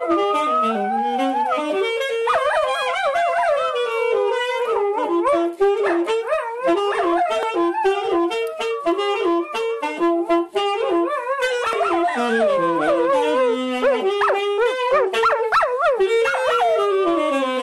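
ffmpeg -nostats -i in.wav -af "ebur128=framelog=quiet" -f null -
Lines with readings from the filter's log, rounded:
Integrated loudness:
  I:         -19.4 LUFS
  Threshold: -29.4 LUFS
Loudness range:
  LRA:         2.5 LU
  Threshold: -39.5 LUFS
  LRA low:   -20.7 LUFS
  LRA high:  -18.2 LUFS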